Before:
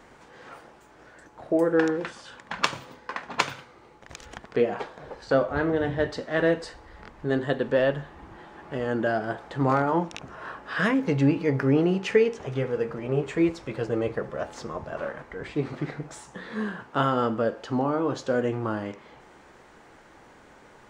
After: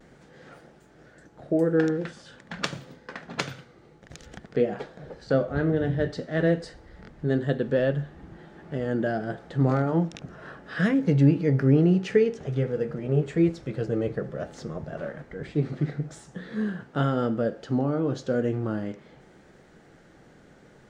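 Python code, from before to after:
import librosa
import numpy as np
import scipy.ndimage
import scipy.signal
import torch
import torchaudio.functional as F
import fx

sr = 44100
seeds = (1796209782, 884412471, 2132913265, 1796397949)

y = fx.graphic_eq_15(x, sr, hz=(160, 1000, 2500), db=(8, -12, -5))
y = fx.vibrato(y, sr, rate_hz=0.48, depth_cents=25.0)
y = fx.high_shelf(y, sr, hz=5300.0, db=-5.5)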